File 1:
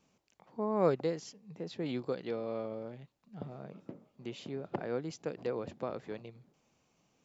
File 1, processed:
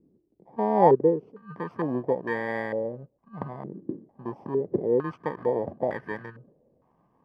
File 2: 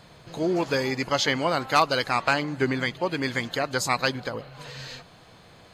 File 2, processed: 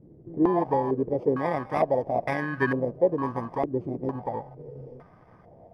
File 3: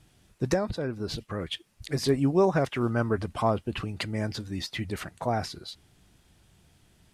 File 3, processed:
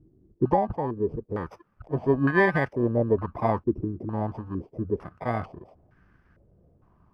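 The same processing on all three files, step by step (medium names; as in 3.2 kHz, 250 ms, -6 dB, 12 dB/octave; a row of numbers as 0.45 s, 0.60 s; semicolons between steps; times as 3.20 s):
bit-reversed sample order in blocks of 32 samples; step-sequenced low-pass 2.2 Hz 350–1600 Hz; normalise loudness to -27 LUFS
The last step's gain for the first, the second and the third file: +7.0 dB, -1.0 dB, +0.5 dB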